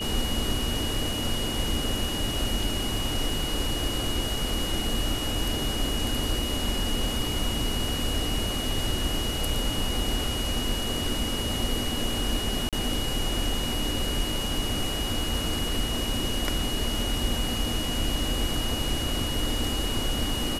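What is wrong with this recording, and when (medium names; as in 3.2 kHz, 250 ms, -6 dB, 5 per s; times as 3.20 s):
whine 2.9 kHz -32 dBFS
12.69–12.73 s: dropout 37 ms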